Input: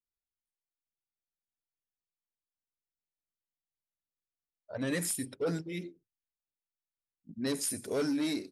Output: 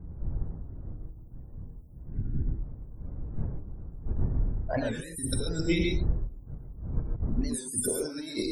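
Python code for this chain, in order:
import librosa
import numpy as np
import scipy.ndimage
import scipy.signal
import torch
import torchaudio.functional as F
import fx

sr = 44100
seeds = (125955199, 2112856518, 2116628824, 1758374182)

p1 = fx.dmg_wind(x, sr, seeds[0], corner_hz=82.0, level_db=-40.0)
p2 = fx.high_shelf(p1, sr, hz=3800.0, db=11.5)
p3 = fx.over_compress(p2, sr, threshold_db=-37.0, ratio=-0.5)
p4 = fx.spec_topn(p3, sr, count=64)
p5 = 10.0 ** (-29.5 / 20.0) * np.tanh(p4 / 10.0 ** (-29.5 / 20.0))
p6 = p4 + (p5 * 10.0 ** (-11.0 / 20.0))
p7 = fx.spec_repair(p6, sr, seeds[1], start_s=2.14, length_s=0.32, low_hz=430.0, high_hz=1400.0, source='before')
p8 = fx.rev_gated(p7, sr, seeds[2], gate_ms=160, shape='rising', drr_db=2.0)
p9 = fx.record_warp(p8, sr, rpm=45.0, depth_cents=160.0)
y = p9 * 10.0 ** (5.0 / 20.0)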